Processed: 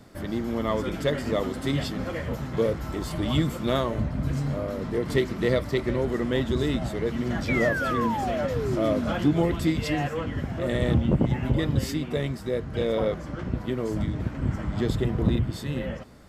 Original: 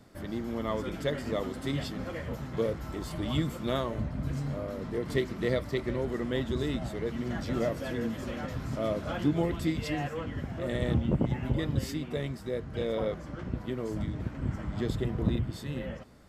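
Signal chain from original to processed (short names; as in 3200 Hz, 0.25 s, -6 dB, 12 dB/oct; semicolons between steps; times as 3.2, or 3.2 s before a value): painted sound fall, 7.48–9.14, 200–2400 Hz -35 dBFS; in parallel at -8.5 dB: hard clip -23.5 dBFS, distortion -15 dB; on the sum: gain +3 dB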